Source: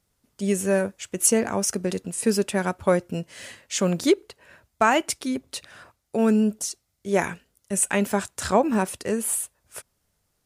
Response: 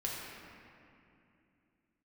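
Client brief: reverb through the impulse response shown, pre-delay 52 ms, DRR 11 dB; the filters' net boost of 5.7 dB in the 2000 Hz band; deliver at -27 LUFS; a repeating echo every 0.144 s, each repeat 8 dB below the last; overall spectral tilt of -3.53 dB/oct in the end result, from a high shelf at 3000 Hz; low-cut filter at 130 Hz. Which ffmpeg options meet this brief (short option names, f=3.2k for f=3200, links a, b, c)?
-filter_complex "[0:a]highpass=130,equalizer=f=2k:t=o:g=5,highshelf=f=3k:g=7,aecho=1:1:144|288|432|576|720:0.398|0.159|0.0637|0.0255|0.0102,asplit=2[a][b];[1:a]atrim=start_sample=2205,adelay=52[c];[b][c]afir=irnorm=-1:irlink=0,volume=-14.5dB[d];[a][d]amix=inputs=2:normalize=0,volume=-6.5dB"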